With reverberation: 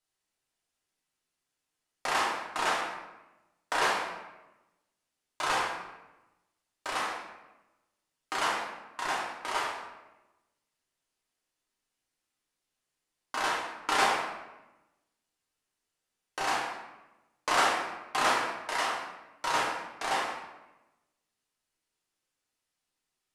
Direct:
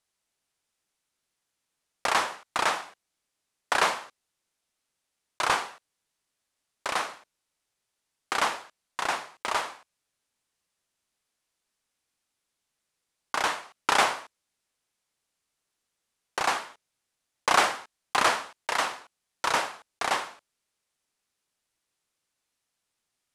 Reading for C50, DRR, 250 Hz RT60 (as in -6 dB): 2.0 dB, -4.5 dB, 1.3 s